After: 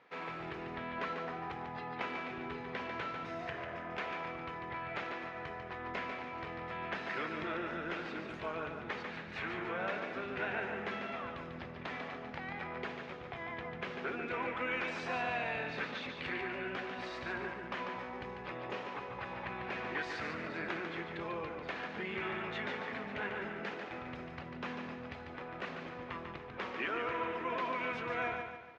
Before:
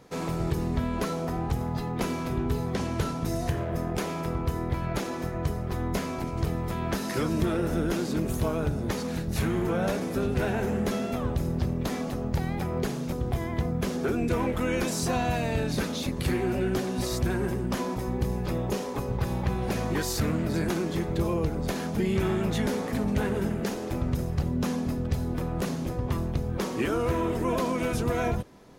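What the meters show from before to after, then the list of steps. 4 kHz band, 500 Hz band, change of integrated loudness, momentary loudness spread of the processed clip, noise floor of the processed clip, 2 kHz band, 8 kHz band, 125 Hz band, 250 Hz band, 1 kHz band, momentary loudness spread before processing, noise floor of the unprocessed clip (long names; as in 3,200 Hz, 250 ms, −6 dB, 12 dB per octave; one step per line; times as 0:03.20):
−8.0 dB, −11.5 dB, −10.5 dB, 7 LU, −47 dBFS, −0.5 dB, below −25 dB, −22.0 dB, −16.5 dB, −5.0 dB, 4 LU, −33 dBFS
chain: low-pass filter 2,400 Hz 24 dB per octave
first difference
repeating echo 145 ms, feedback 42%, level −6 dB
level +11 dB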